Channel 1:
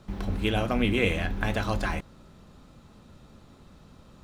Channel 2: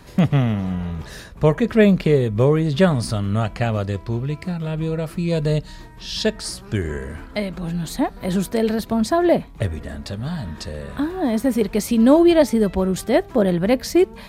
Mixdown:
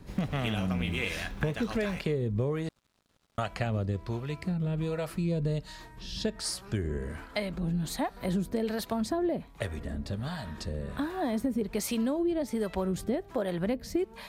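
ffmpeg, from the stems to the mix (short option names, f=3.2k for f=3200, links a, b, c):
-filter_complex "[0:a]tiltshelf=f=1.1k:g=-5,aeval=exprs='sgn(val(0))*max(abs(val(0))-0.00251,0)':c=same,volume=-5.5dB[a];[1:a]alimiter=limit=-9.5dB:level=0:latency=1:release=429,acrossover=split=490[b][c];[b]aeval=exprs='val(0)*(1-0.7/2+0.7/2*cos(2*PI*1.3*n/s))':c=same[d];[c]aeval=exprs='val(0)*(1-0.7/2-0.7/2*cos(2*PI*1.3*n/s))':c=same[e];[d][e]amix=inputs=2:normalize=0,volume=-2.5dB,asplit=3[f][g][h];[f]atrim=end=2.69,asetpts=PTS-STARTPTS,afade=t=out:st=2.686:d=0.004:c=hsin[i];[g]atrim=start=2.69:end=3.38,asetpts=PTS-STARTPTS,volume=0[j];[h]atrim=start=3.38,asetpts=PTS-STARTPTS,afade=t=in:d=0.004:c=hsin[k];[i][j][k]concat=n=3:v=0:a=1[l];[a][l]amix=inputs=2:normalize=0,acompressor=threshold=-26dB:ratio=6"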